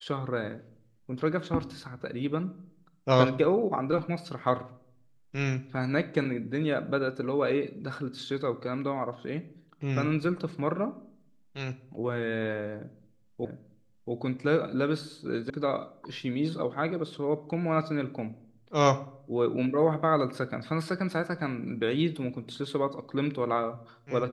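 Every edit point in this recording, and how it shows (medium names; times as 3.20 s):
13.45 s: repeat of the last 0.68 s
15.50 s: sound stops dead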